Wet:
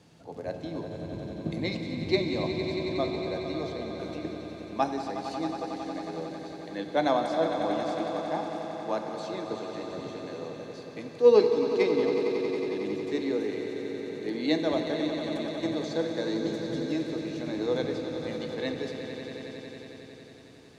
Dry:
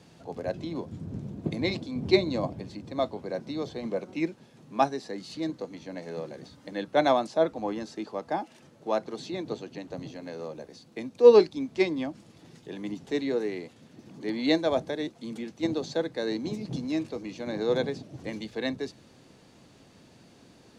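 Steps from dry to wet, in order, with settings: 3.77–4.25 negative-ratio compressor -39 dBFS; swelling echo 91 ms, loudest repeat 5, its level -11 dB; FDN reverb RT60 2.9 s, low-frequency decay 0.7×, high-frequency decay 0.95×, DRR 6.5 dB; gain -3.5 dB

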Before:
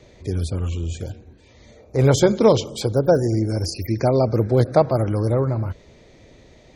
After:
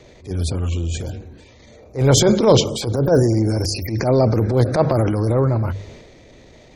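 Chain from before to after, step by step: notches 50/100/150/200 Hz; transient shaper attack -11 dB, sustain +6 dB; gain +3.5 dB

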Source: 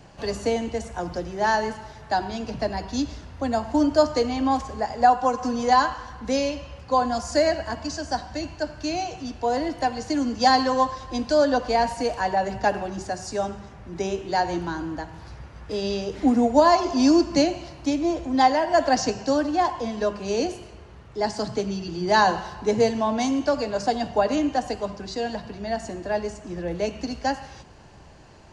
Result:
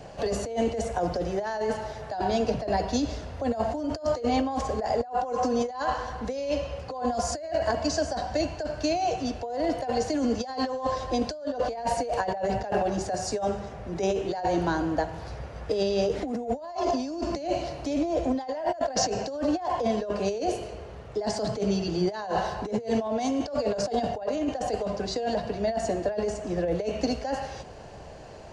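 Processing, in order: band shelf 560 Hz +8 dB 1 oct; negative-ratio compressor -25 dBFS, ratio -1; gain -3.5 dB

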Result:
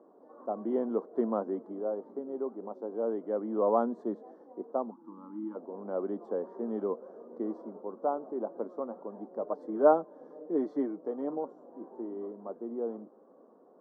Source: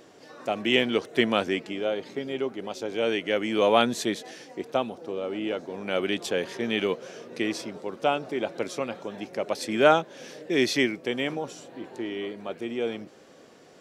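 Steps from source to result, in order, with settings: 4.91–5.56 spectral gain 350–820 Hz -24 dB; elliptic band-pass 210–1100 Hz, stop band 40 dB; 9.41–11.45 comb 6.6 ms, depth 53%; gain -5 dB

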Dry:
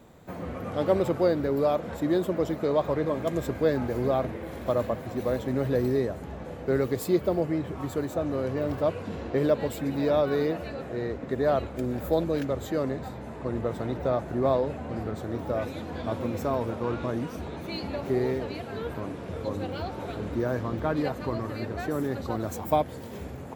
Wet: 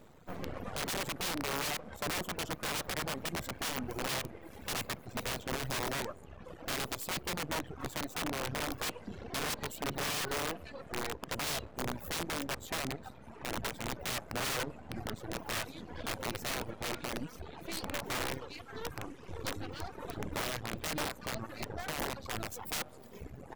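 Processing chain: tape echo 65 ms, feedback 82%, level -18 dB, low-pass 1600 Hz; half-wave rectifier; reverb removal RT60 1.7 s; 18.19–19.95 thirty-one-band EQ 200 Hz -9 dB, 630 Hz -10 dB, 6300 Hz +3 dB; wrapped overs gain 27 dB

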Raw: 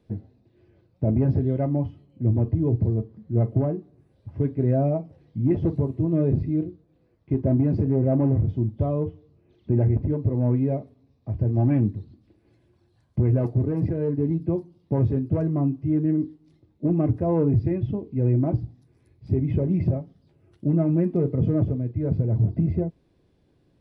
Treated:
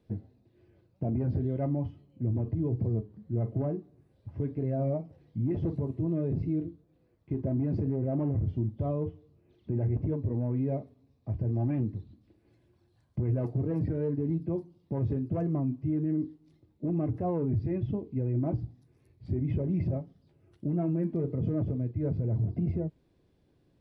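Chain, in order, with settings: limiter -18 dBFS, peak gain reduction 6.5 dB; record warp 33 1/3 rpm, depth 100 cents; gain -4 dB

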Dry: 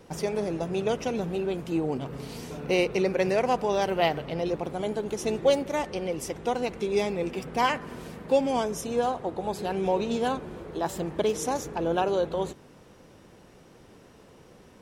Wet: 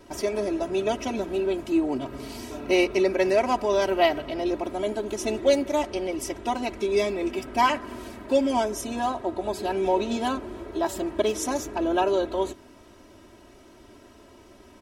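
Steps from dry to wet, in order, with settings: comb 3.1 ms, depth 94%

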